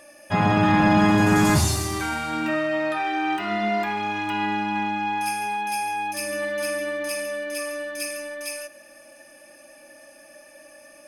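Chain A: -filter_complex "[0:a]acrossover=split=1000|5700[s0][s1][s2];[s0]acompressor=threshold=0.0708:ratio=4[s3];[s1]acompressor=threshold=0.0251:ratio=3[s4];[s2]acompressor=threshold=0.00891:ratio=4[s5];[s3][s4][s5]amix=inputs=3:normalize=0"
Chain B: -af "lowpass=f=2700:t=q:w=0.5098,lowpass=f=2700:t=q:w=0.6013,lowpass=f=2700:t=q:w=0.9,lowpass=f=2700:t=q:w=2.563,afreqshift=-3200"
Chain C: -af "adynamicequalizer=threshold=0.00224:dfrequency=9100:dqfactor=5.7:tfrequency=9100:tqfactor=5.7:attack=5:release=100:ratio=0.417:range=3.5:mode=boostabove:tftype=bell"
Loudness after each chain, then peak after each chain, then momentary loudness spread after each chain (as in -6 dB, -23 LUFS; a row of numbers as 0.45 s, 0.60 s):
-27.0 LUFS, -20.5 LUFS, -23.5 LUFS; -13.5 dBFS, -6.0 dBFS, -8.5 dBFS; 8 LU, 15 LU, 11 LU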